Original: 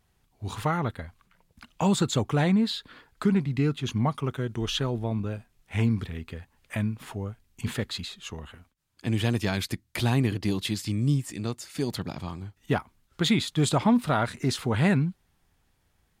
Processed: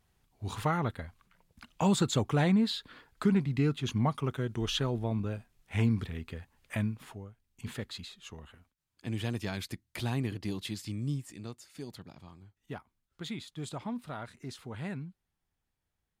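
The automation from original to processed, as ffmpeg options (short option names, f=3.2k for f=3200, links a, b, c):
-af "volume=3.5dB,afade=t=out:st=6.8:d=0.5:silence=0.251189,afade=t=in:st=7.3:d=0.45:silence=0.473151,afade=t=out:st=10.87:d=1.21:silence=0.421697"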